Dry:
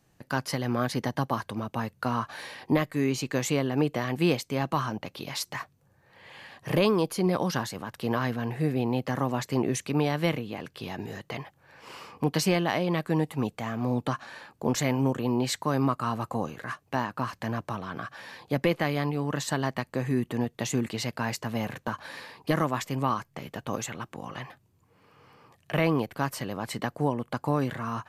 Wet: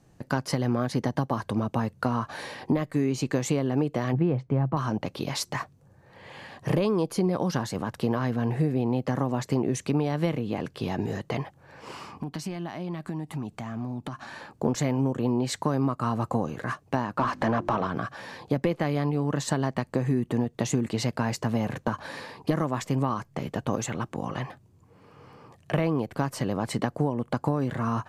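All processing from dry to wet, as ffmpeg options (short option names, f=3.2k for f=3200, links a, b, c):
-filter_complex "[0:a]asettb=1/sr,asplit=3[a][b][c];[a]atrim=end=4.134[d];[b]atrim=start=4.13:end=4.77,asetpts=PTS-STARTPTS,afade=t=in:d=0.004:c=qsin,afade=t=out:st=0.636:d=0.004:c=qsin,lowpass=1.6k,equalizer=f=130:t=o:w=0.35:g=10.5[e];[c]atrim=start=4.766[f];[d][e]acrossfade=d=0.004:c1=hsin:c2=qsin[g];[g][f]acrossfade=d=0.004:c1=qsin:c2=hsin,asettb=1/sr,asplit=3[h][i][j];[h]atrim=end=11.934[k];[i]atrim=start=11.93:end=14.4,asetpts=PTS-STARTPTS,afade=t=in:d=0.004:c=qsin,afade=t=out:st=2.466:d=0.004:c=qsin,equalizer=f=490:t=o:w=0.33:g=-12.5,acompressor=threshold=-37dB:ratio=8:attack=3.2:release=140:knee=1:detection=peak[l];[j]atrim=start=14.396[m];[k][l]acrossfade=d=0.004:c1=hsin:c2=qsin[n];[n][m]acrossfade=d=0.004:c1=qsin:c2=hsin,asettb=1/sr,asplit=3[o][p][q];[o]atrim=end=17.184[r];[p]atrim=start=17.18:end=17.87,asetpts=PTS-STARTPTS,afade=t=in:d=0.004:c=qsin,afade=t=out:st=0.686:d=0.004:c=qsin,asplit=2[s][t];[t]highpass=f=720:p=1,volume=19dB,asoftclip=type=tanh:threshold=-15dB[u];[s][u]amix=inputs=2:normalize=0,lowpass=f=1.6k:p=1,volume=-6dB,bandreject=f=50:t=h:w=6,bandreject=f=100:t=h:w=6,bandreject=f=150:t=h:w=6,bandreject=f=200:t=h:w=6,bandreject=f=250:t=h:w=6,bandreject=f=300:t=h:w=6,bandreject=f=350:t=h:w=6,acompressor=mode=upward:threshold=-31dB:ratio=2.5:attack=3.2:release=140:knee=2.83:detection=peak[v];[q]atrim=start=17.866[w];[r][v]acrossfade=d=0.004:c1=hsin:c2=qsin[x];[x][w]acrossfade=d=0.004:c1=qsin:c2=hsin,lowpass=8.3k,equalizer=f=2.8k:w=0.4:g=-8,acompressor=threshold=-30dB:ratio=5,volume=8.5dB"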